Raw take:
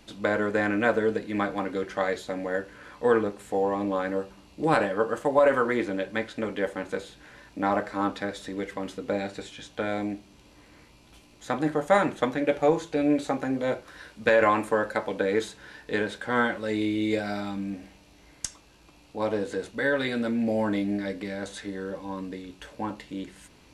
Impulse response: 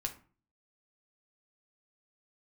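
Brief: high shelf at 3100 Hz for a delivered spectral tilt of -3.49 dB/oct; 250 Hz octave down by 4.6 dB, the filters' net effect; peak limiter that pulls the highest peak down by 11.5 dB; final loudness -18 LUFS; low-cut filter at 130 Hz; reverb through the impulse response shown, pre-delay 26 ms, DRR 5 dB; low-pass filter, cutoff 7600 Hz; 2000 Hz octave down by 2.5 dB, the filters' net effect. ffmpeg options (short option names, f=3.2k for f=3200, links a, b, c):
-filter_complex "[0:a]highpass=130,lowpass=7.6k,equalizer=f=250:t=o:g=-5.5,equalizer=f=2k:t=o:g=-4.5,highshelf=f=3.1k:g=4,alimiter=limit=-20dB:level=0:latency=1,asplit=2[a][b];[1:a]atrim=start_sample=2205,adelay=26[c];[b][c]afir=irnorm=-1:irlink=0,volume=-5.5dB[d];[a][d]amix=inputs=2:normalize=0,volume=14dB"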